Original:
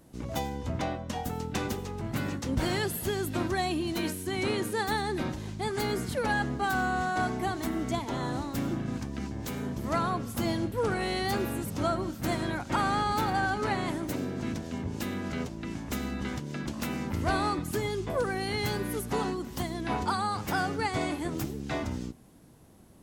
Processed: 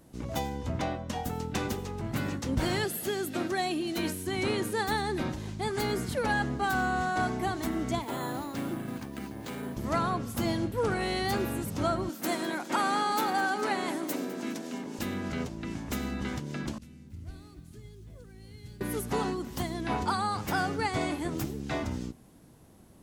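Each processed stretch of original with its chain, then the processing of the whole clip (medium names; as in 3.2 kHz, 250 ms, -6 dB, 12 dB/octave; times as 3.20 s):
2.85–3.98 s: high-pass 200 Hz + band-stop 1 kHz, Q 5.2
8.02–9.77 s: high-pass 230 Hz 6 dB/octave + careless resampling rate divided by 4×, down filtered, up hold
12.09–14.99 s: high-pass 220 Hz 24 dB/octave + treble shelf 7.3 kHz +7 dB + feedback delay 206 ms, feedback 36%, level -16 dB
16.78–18.81 s: CVSD coder 64 kbps + amplifier tone stack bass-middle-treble 10-0-1 + bit-crushed delay 283 ms, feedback 35%, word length 10-bit, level -12 dB
whole clip: none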